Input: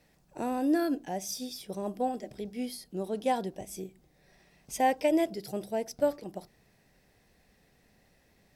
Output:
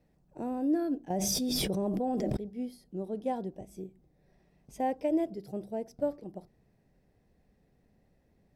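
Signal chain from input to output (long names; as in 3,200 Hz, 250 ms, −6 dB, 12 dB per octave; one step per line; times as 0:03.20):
tilt shelving filter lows +8 dB
0:01.10–0:02.37: envelope flattener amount 100%
level −8 dB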